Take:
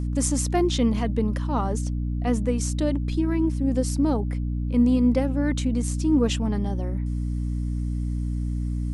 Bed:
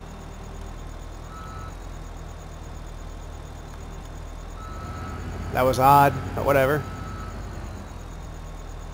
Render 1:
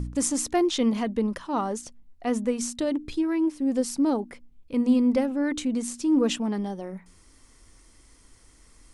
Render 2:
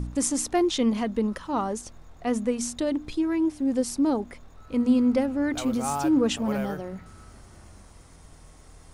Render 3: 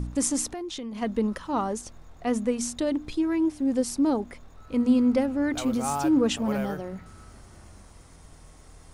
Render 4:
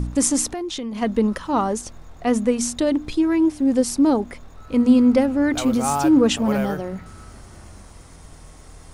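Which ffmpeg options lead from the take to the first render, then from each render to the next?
-af "bandreject=f=60:t=h:w=4,bandreject=f=120:t=h:w=4,bandreject=f=180:t=h:w=4,bandreject=f=240:t=h:w=4,bandreject=f=300:t=h:w=4"
-filter_complex "[1:a]volume=0.188[s0];[0:a][s0]amix=inputs=2:normalize=0"
-filter_complex "[0:a]asplit=3[s0][s1][s2];[s0]afade=t=out:st=0.48:d=0.02[s3];[s1]acompressor=threshold=0.0251:ratio=8:attack=3.2:release=140:knee=1:detection=peak,afade=t=in:st=0.48:d=0.02,afade=t=out:st=1.01:d=0.02[s4];[s2]afade=t=in:st=1.01:d=0.02[s5];[s3][s4][s5]amix=inputs=3:normalize=0"
-af "volume=2.11"

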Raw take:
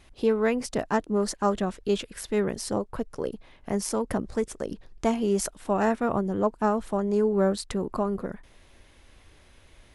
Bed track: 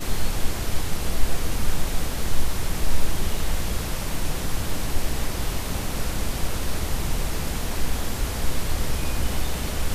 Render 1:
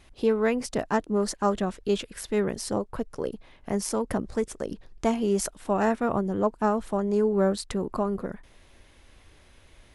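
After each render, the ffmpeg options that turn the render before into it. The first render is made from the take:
-af anull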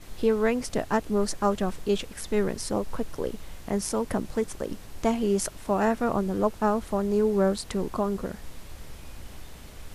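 -filter_complex "[1:a]volume=0.126[s0];[0:a][s0]amix=inputs=2:normalize=0"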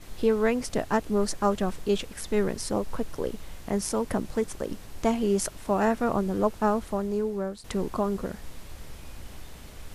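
-filter_complex "[0:a]asplit=2[s0][s1];[s0]atrim=end=7.64,asetpts=PTS-STARTPTS,afade=t=out:st=6.73:d=0.91:silence=0.199526[s2];[s1]atrim=start=7.64,asetpts=PTS-STARTPTS,afade=t=in:d=0.004:c=hsin:silence=0.199526[s3];[s2][s3]concat=n=2:v=0:a=1"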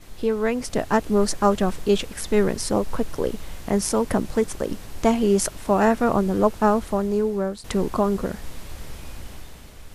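-af "dynaudnorm=f=110:g=13:m=2"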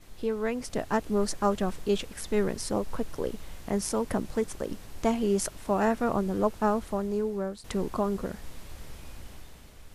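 -af "volume=0.447"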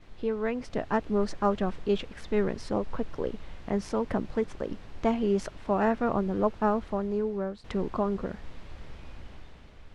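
-af "lowpass=3400"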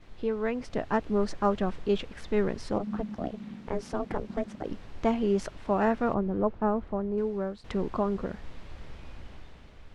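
-filter_complex "[0:a]asplit=3[s0][s1][s2];[s0]afade=t=out:st=2.78:d=0.02[s3];[s1]aeval=exprs='val(0)*sin(2*PI*210*n/s)':c=same,afade=t=in:st=2.78:d=0.02,afade=t=out:st=4.63:d=0.02[s4];[s2]afade=t=in:st=4.63:d=0.02[s5];[s3][s4][s5]amix=inputs=3:normalize=0,asettb=1/sr,asplit=3[s6][s7][s8];[s6]atrim=end=6.144[s9];[s7]atrim=start=6.14:end=7.18,asetpts=PTS-STARTPTS,afade=t=in:d=0.004:c=qsin,afade=t=out:st=1.036:d=0.004:c=qsin,lowpass=f=1000:p=1[s10];[s8]atrim=start=7.176[s11];[s9][s10]acrossfade=d=0.004:c1=hsin:c2=qsin[s12];[s12][s11]acrossfade=d=0.004:c1=qsin:c2=hsin"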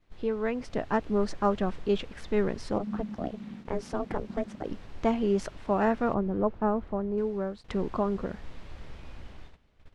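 -af "agate=range=0.178:threshold=0.00631:ratio=16:detection=peak"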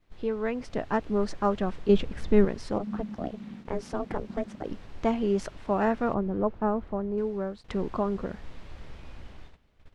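-filter_complex "[0:a]asettb=1/sr,asplit=3[s0][s1][s2];[s0]atrim=end=1.894[s3];[s1]atrim=start=1.89:end=2.45,asetpts=PTS-STARTPTS,afade=t=in:d=0.004:c=qsin,afade=t=out:st=0.556:d=0.004:c=qsin,lowshelf=f=400:g=10[s4];[s2]atrim=start=2.446[s5];[s3][s4]acrossfade=d=0.004:c1=hsin:c2=qsin[s6];[s6][s5]acrossfade=d=0.004:c1=qsin:c2=hsin"

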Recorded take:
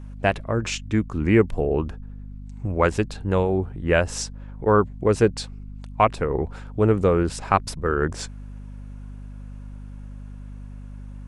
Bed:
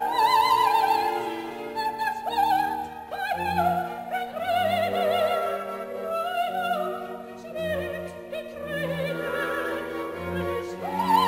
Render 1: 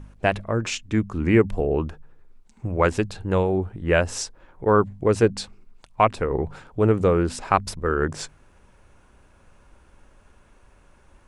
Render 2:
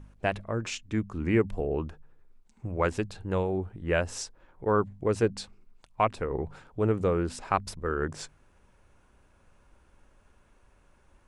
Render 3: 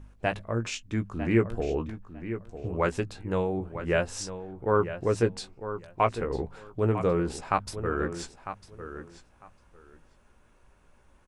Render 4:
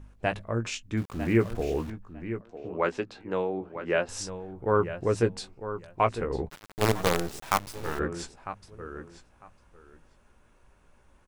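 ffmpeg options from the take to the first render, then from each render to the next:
-af "bandreject=f=50:t=h:w=4,bandreject=f=100:t=h:w=4,bandreject=f=150:t=h:w=4,bandreject=f=200:t=h:w=4,bandreject=f=250:t=h:w=4"
-af "volume=0.447"
-filter_complex "[0:a]asplit=2[s0][s1];[s1]adelay=17,volume=0.376[s2];[s0][s2]amix=inputs=2:normalize=0,asplit=2[s3][s4];[s4]adelay=951,lowpass=f=4000:p=1,volume=0.282,asplit=2[s5][s6];[s6]adelay=951,lowpass=f=4000:p=1,volume=0.18[s7];[s3][s5][s7]amix=inputs=3:normalize=0"
-filter_complex "[0:a]asettb=1/sr,asplit=3[s0][s1][s2];[s0]atrim=end=0.974[s3];[s1]atrim=start=0.97:end=1.9,asetpts=PTS-STARTPTS,afade=t=in:d=0.004:c=qsin,afade=t=out:st=0.926:d=0.004:c=qsin,aeval=exprs='val(0)*gte(abs(val(0)),0.00891)':c=same[s4];[s2]atrim=start=1.896[s5];[s3][s4]acrossfade=d=0.004:c1=hsin:c2=qsin[s6];[s6][s5]acrossfade=d=0.004:c1=qsin:c2=hsin,asettb=1/sr,asplit=3[s7][s8][s9];[s7]atrim=end=2.414[s10];[s8]atrim=start=2.41:end=4.09,asetpts=PTS-STARTPTS,afade=t=in:d=0.004:c=qsin,afade=t=out:st=1.676:d=0.004:c=qsin,acrossover=split=200 6000:gain=0.141 1 0.1[s11][s12][s13];[s11][s12][s13]amix=inputs=3:normalize=0[s14];[s9]atrim=start=4.086[s15];[s10][s14]acrossfade=d=0.004:c1=hsin:c2=qsin[s16];[s16][s15]acrossfade=d=0.004:c1=qsin:c2=hsin,asplit=3[s17][s18][s19];[s17]afade=t=out:st=6.48:d=0.02[s20];[s18]acrusher=bits=4:dc=4:mix=0:aa=0.000001,afade=t=in:st=6.48:d=0.02,afade=t=out:st=7.98:d=0.02[s21];[s19]afade=t=in:st=7.98:d=0.02[s22];[s20][s21][s22]amix=inputs=3:normalize=0"

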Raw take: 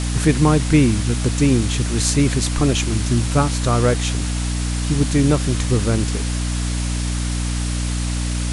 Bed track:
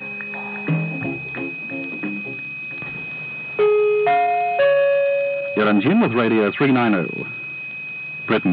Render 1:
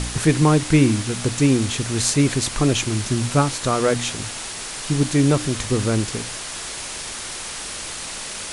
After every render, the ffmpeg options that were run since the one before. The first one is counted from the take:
-af "bandreject=f=60:t=h:w=4,bandreject=f=120:t=h:w=4,bandreject=f=180:t=h:w=4,bandreject=f=240:t=h:w=4,bandreject=f=300:t=h:w=4"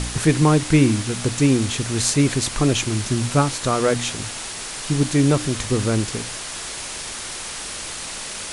-af anull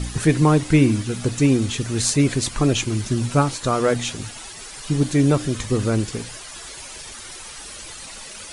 -af "afftdn=nr=11:nf=-32"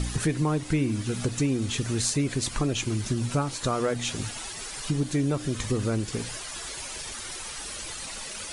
-af "acompressor=threshold=0.0562:ratio=3"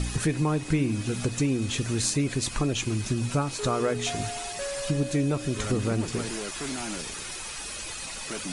-filter_complex "[1:a]volume=0.112[s0];[0:a][s0]amix=inputs=2:normalize=0"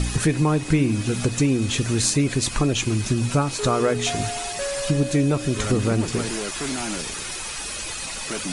-af "volume=1.88"

